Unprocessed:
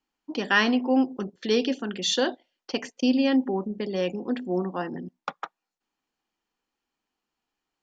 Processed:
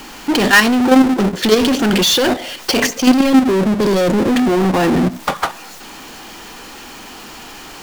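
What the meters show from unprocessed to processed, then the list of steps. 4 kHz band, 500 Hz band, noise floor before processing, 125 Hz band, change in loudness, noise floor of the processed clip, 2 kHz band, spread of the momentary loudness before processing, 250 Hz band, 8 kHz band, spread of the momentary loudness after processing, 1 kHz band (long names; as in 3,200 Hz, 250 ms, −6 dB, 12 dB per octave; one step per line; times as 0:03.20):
+12.5 dB, +12.0 dB, below −85 dBFS, +16.5 dB, +12.0 dB, −35 dBFS, +12.5 dB, 15 LU, +12.5 dB, can't be measured, 22 LU, +13.5 dB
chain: output level in coarse steps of 20 dB
time-frequency box erased 0:03.30–0:04.33, 570–3,200 Hz
power curve on the samples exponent 0.35
level +7 dB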